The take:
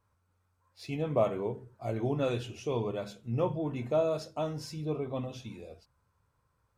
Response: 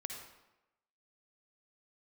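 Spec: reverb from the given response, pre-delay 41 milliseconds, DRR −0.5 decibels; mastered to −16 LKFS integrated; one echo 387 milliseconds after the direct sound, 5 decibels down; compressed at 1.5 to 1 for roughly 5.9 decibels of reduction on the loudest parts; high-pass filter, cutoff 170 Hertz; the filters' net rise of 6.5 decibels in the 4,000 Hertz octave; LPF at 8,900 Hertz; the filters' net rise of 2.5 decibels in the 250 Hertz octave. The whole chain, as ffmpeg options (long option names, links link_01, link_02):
-filter_complex "[0:a]highpass=170,lowpass=8900,equalizer=frequency=250:width_type=o:gain=4.5,equalizer=frequency=4000:width_type=o:gain=8.5,acompressor=threshold=-38dB:ratio=1.5,aecho=1:1:387:0.562,asplit=2[link_01][link_02];[1:a]atrim=start_sample=2205,adelay=41[link_03];[link_02][link_03]afir=irnorm=-1:irlink=0,volume=1.5dB[link_04];[link_01][link_04]amix=inputs=2:normalize=0,volume=17dB"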